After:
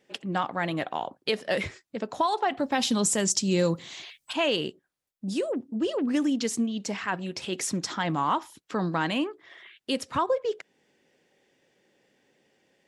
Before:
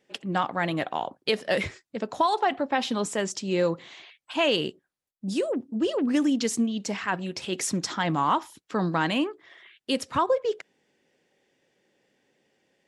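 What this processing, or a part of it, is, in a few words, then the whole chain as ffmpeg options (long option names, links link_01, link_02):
parallel compression: -filter_complex "[0:a]asplit=2[link_01][link_02];[link_02]acompressor=threshold=-40dB:ratio=6,volume=-1.5dB[link_03];[link_01][link_03]amix=inputs=2:normalize=0,asettb=1/sr,asplit=3[link_04][link_05][link_06];[link_04]atrim=end=2.574[link_07];[link_05]atrim=start=2.57:end=4.33,asetpts=PTS-STARTPTS,afade=type=in:duration=0.004:curve=qsin,afade=type=out:start_time=1.756:duration=0.004:curve=qsin,bass=frequency=250:gain=9,treble=frequency=4000:gain=13[link_08];[link_06]atrim=start=4.326[link_09];[link_07][link_08]acrossfade=duration=0.004:curve1=hsin:curve2=qsin[link_10];[link_10][link_09]acrossfade=duration=0.004:curve1=qsin:curve2=hsin,volume=-3dB"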